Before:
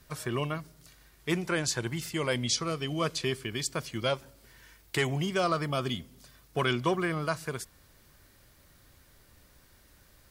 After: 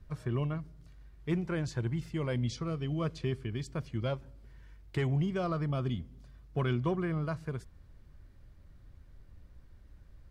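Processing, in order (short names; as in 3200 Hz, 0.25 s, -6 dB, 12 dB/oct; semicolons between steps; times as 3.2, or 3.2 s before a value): RIAA curve playback; gain -8 dB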